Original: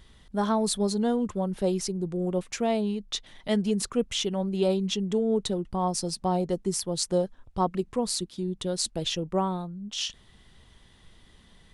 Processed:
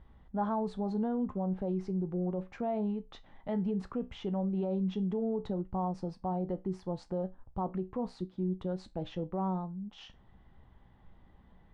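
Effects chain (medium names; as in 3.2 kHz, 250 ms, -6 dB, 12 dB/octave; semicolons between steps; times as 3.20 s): low-pass 1.2 kHz 12 dB/octave; peaking EQ 410 Hz -3.5 dB 0.52 oct; feedback comb 62 Hz, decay 0.21 s, harmonics all, mix 60%; peak limiter -26.5 dBFS, peak gain reduction 9.5 dB; peaking EQ 820 Hz +6 dB 0.23 oct; trim +1 dB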